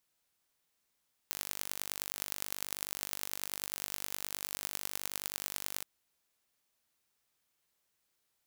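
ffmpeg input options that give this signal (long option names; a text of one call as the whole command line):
ffmpeg -f lavfi -i "aevalsrc='0.447*eq(mod(n,893),0)*(0.5+0.5*eq(mod(n,4465),0))':duration=4.53:sample_rate=44100" out.wav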